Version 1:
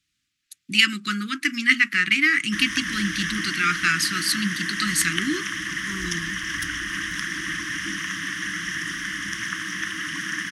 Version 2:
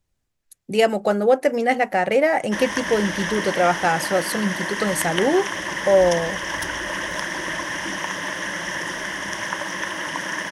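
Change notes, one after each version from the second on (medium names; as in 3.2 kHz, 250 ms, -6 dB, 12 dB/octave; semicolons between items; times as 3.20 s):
speech: remove frequency weighting D; master: remove Chebyshev band-stop 320–1200 Hz, order 4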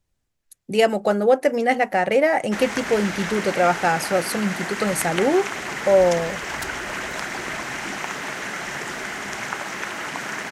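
background: remove rippled EQ curve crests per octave 1.2, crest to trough 12 dB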